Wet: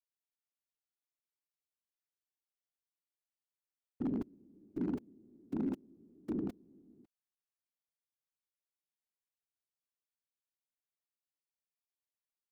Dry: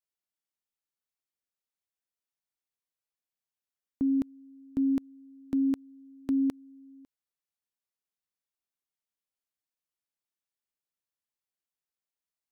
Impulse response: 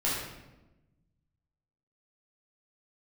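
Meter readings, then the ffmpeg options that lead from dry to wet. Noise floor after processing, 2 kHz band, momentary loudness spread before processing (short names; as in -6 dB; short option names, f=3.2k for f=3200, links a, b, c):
under -85 dBFS, n/a, 8 LU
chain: -af "afftfilt=real='hypot(re,im)*cos(2*PI*random(0))':imag='hypot(re,im)*sin(2*PI*random(1))':win_size=512:overlap=0.75,aeval=exprs='0.0596*(abs(mod(val(0)/0.0596+3,4)-2)-1)':c=same,volume=-3.5dB"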